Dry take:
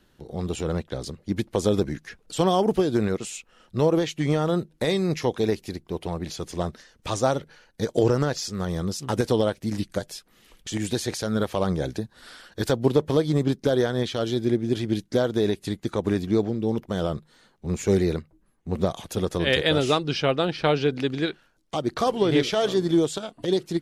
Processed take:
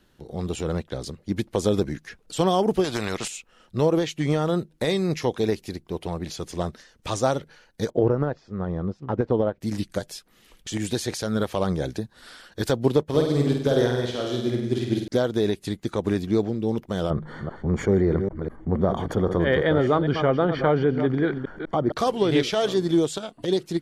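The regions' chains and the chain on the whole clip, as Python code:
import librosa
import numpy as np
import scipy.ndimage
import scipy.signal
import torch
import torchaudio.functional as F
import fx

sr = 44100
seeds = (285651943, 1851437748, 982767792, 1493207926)

y = fx.chain(x, sr, fx.high_shelf(hz=5900.0, db=-8.5),
    fx.spectral_comp(ratio=2.0), at=(2.84, 3.28))
y = fx.chain(y, sr, fx.lowpass(hz=1300.0, slope=12),
    fx.transient(attack_db=0, sustain_db=-5), at=(7.9, 9.61))
y = fx.chain(y, sr, fx.room_flutter(wall_m=8.5, rt60_s=0.98),
    fx.upward_expand(threshold_db=-36.0, expansion=1.5), at=(13.03, 15.08))
y = fx.chain(y, sr, fx.reverse_delay(ms=198, wet_db=-13.0),
    fx.savgol(points=41),
    fx.env_flatten(amount_pct=50), at=(17.1, 21.92))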